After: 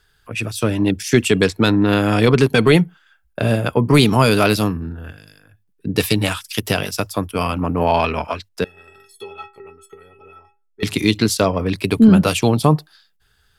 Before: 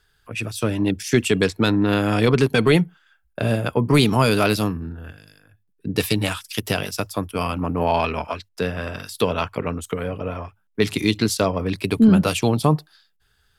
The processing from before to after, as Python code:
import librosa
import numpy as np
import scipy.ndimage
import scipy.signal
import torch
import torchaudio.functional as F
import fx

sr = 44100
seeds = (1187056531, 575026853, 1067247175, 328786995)

y = fx.stiff_resonator(x, sr, f0_hz=390.0, decay_s=0.31, stiffness=0.03, at=(8.64, 10.83))
y = y * 10.0 ** (3.5 / 20.0)